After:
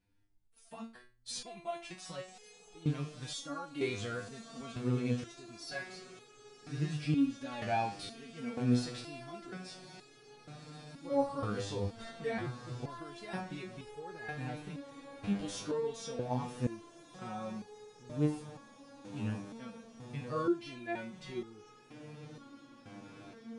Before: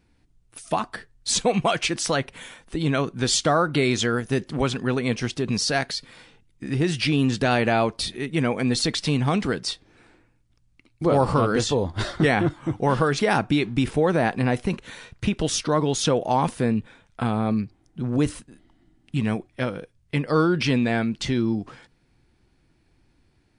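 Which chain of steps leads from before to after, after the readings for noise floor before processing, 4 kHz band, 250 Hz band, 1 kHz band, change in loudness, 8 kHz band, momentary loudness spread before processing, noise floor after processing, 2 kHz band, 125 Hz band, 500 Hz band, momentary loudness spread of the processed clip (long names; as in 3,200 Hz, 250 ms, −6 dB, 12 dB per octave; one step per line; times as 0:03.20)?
−64 dBFS, −18.5 dB, −13.5 dB, −15.5 dB, −14.5 dB, −19.5 dB, 9 LU, −60 dBFS, −17.5 dB, −13.5 dB, −15.0 dB, 19 LU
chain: feedback delay with all-pass diffusion 1,118 ms, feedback 79%, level −15 dB
harmonic and percussive parts rebalanced percussive −10 dB
step-sequenced resonator 2.1 Hz 100–420 Hz
level −1 dB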